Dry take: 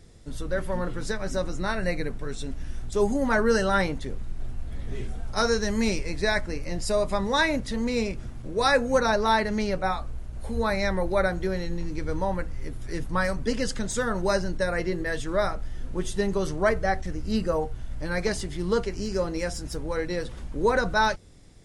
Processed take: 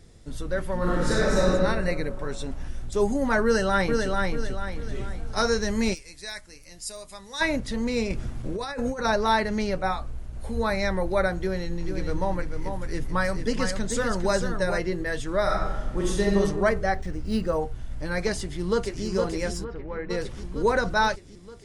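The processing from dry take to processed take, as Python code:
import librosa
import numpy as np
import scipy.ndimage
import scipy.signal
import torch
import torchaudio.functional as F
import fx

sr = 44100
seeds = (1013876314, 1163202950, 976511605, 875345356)

y = fx.reverb_throw(x, sr, start_s=0.77, length_s=0.72, rt60_s=1.8, drr_db=-7.5)
y = fx.peak_eq(y, sr, hz=880.0, db=8.0, octaves=1.2, at=(2.17, 2.69))
y = fx.echo_throw(y, sr, start_s=3.44, length_s=0.66, ms=440, feedback_pct=40, wet_db=-3.5)
y = fx.pre_emphasis(y, sr, coefficient=0.9, at=(5.93, 7.4), fade=0.02)
y = fx.over_compress(y, sr, threshold_db=-29.0, ratio=-1.0, at=(8.1, 9.05))
y = fx.echo_single(y, sr, ms=441, db=-6.5, at=(11.83, 14.77), fade=0.02)
y = fx.reverb_throw(y, sr, start_s=15.42, length_s=0.95, rt60_s=1.2, drr_db=-2.5)
y = fx.resample_linear(y, sr, factor=3, at=(16.94, 17.53))
y = fx.echo_throw(y, sr, start_s=18.37, length_s=0.68, ms=460, feedback_pct=70, wet_db=-5.5)
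y = fx.ladder_lowpass(y, sr, hz=2900.0, resonance_pct=20, at=(19.63, 20.09), fade=0.02)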